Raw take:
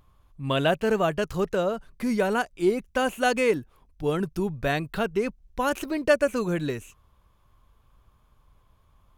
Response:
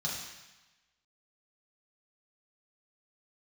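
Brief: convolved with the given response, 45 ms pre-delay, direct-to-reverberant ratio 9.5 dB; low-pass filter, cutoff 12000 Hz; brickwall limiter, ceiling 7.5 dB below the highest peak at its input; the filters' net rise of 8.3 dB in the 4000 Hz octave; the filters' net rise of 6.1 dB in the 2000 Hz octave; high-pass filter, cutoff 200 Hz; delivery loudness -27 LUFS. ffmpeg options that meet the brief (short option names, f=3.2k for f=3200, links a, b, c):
-filter_complex "[0:a]highpass=200,lowpass=12k,equalizer=f=2k:t=o:g=6.5,equalizer=f=4k:t=o:g=8.5,alimiter=limit=-12.5dB:level=0:latency=1,asplit=2[a][b];[1:a]atrim=start_sample=2205,adelay=45[c];[b][c]afir=irnorm=-1:irlink=0,volume=-14dB[d];[a][d]amix=inputs=2:normalize=0,volume=-1.5dB"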